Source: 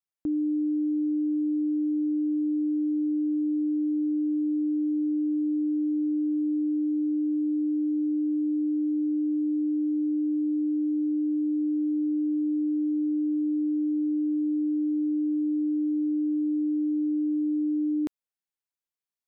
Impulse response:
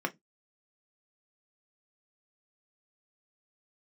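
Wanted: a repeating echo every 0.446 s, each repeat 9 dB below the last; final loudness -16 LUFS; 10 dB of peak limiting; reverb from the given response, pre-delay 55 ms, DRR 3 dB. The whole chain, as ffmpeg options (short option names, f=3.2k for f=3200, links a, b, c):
-filter_complex "[0:a]alimiter=level_in=9dB:limit=-24dB:level=0:latency=1,volume=-9dB,aecho=1:1:446|892|1338|1784:0.355|0.124|0.0435|0.0152,asplit=2[a][b];[1:a]atrim=start_sample=2205,adelay=55[c];[b][c]afir=irnorm=-1:irlink=0,volume=-9.5dB[d];[a][d]amix=inputs=2:normalize=0,volume=29dB"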